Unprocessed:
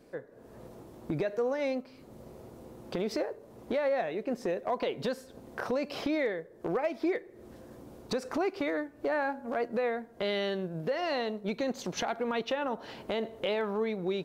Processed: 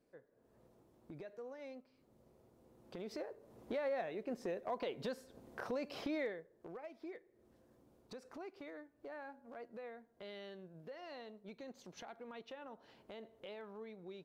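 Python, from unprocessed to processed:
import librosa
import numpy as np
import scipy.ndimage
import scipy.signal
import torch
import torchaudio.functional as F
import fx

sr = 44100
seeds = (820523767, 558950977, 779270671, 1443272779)

y = fx.gain(x, sr, db=fx.line((2.55, -19.0), (3.52, -9.0), (6.23, -9.0), (6.72, -19.0)))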